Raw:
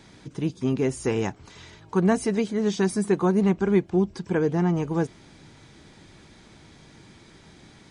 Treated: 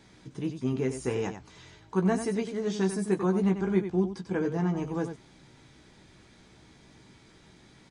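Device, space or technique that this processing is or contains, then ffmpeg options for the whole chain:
slapback doubling: -filter_complex "[0:a]asplit=3[link_01][link_02][link_03];[link_02]adelay=16,volume=-6.5dB[link_04];[link_03]adelay=94,volume=-9dB[link_05];[link_01][link_04][link_05]amix=inputs=3:normalize=0,volume=-6.5dB"

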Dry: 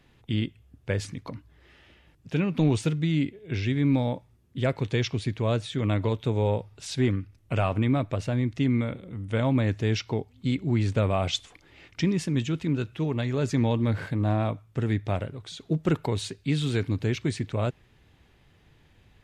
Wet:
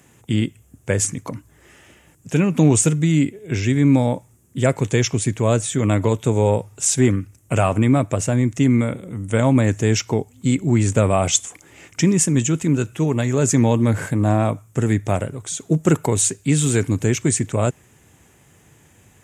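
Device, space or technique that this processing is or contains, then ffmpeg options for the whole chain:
budget condenser microphone: -af "highpass=93,highshelf=frequency=5600:width_type=q:width=3:gain=10,volume=8.5dB"

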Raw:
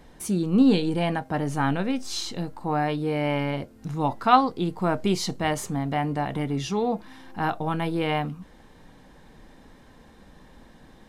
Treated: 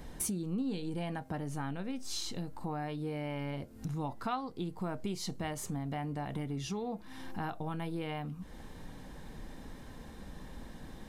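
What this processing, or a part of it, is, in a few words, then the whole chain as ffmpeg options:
ASMR close-microphone chain: -af "lowshelf=frequency=210:gain=6,acompressor=threshold=-37dB:ratio=4,highshelf=frequency=6900:gain=7"

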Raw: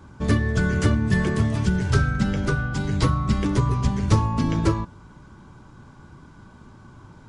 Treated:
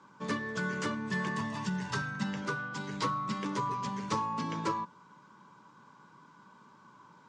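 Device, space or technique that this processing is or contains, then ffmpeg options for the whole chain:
television speaker: -filter_complex "[0:a]highpass=frequency=190:width=0.5412,highpass=frequency=190:width=1.3066,equalizer=frequency=250:width_type=q:width=4:gain=-7,equalizer=frequency=350:width_type=q:width=4:gain=-7,equalizer=frequency=710:width_type=q:width=4:gain=-9,equalizer=frequency=1000:width_type=q:width=4:gain=9,lowpass=frequency=7700:width=0.5412,lowpass=frequency=7700:width=1.3066,asettb=1/sr,asplit=3[link_01][link_02][link_03];[link_01]atrim=end=1.254[link_04];[link_02]atrim=start=1.25:end=2.42,asetpts=PTS-STARTPTS,afade=type=in:duration=0.004:curve=qsin,afade=type=out:start_time=1.166:duration=0.004:curve=qsin,aecho=1:1:1.1:0.47,atrim=end_sample=51597[link_05];[link_03]atrim=start=2.416[link_06];[link_04][link_05]acrossfade=duration=0.004:curve1=hsin:curve2=qsin[link_07];[link_07][link_06]acrossfade=duration=0.004:curve1=qsin:curve2=hsin,volume=-7dB"

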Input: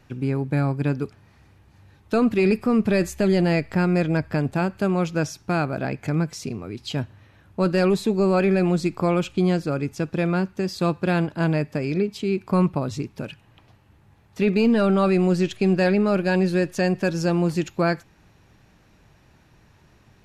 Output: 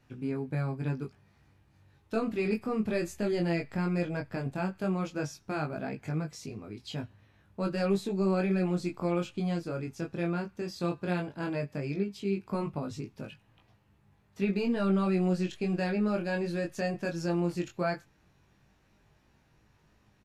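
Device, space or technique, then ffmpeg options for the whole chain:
double-tracked vocal: -filter_complex "[0:a]asplit=2[link_01][link_02];[link_02]adelay=15,volume=-12dB[link_03];[link_01][link_03]amix=inputs=2:normalize=0,flanger=delay=19:depth=4.6:speed=0.15,volume=-7dB"

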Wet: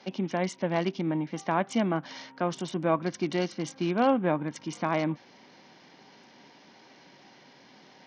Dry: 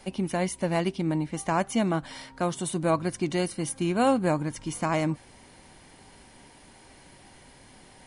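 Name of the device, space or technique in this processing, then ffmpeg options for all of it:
Bluetooth headset: -af "highpass=frequency=160:width=0.5412,highpass=frequency=160:width=1.3066,aresample=16000,aresample=44100,volume=-1dB" -ar 48000 -c:a sbc -b:a 64k

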